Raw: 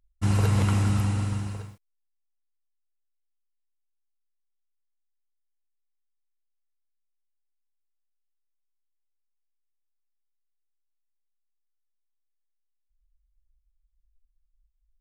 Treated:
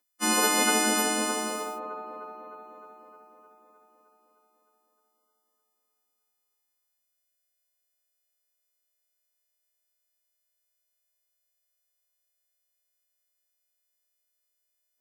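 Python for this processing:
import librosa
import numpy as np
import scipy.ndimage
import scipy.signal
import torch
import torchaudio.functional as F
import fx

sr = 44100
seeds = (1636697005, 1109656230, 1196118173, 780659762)

y = fx.freq_snap(x, sr, grid_st=3)
y = scipy.signal.sosfilt(scipy.signal.cheby1(6, 3, 220.0, 'highpass', fs=sr, output='sos'), y)
y = fx.echo_wet_bandpass(y, sr, ms=307, feedback_pct=65, hz=610.0, wet_db=-3.0)
y = y * 10.0 ** (6.5 / 20.0)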